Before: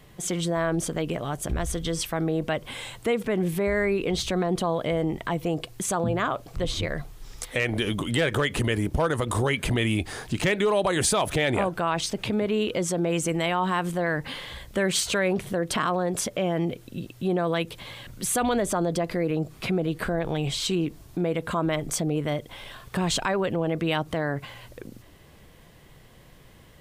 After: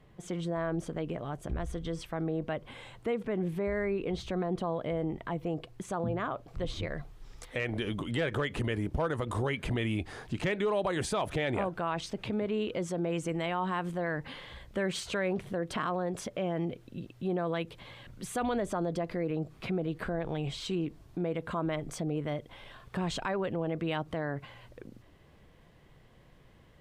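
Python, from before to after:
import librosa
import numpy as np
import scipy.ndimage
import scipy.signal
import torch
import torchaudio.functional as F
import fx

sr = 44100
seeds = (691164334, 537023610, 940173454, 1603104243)

y = fx.lowpass(x, sr, hz=fx.steps((0.0, 1600.0), (6.48, 2700.0)), slope=6)
y = F.gain(torch.from_numpy(y), -6.5).numpy()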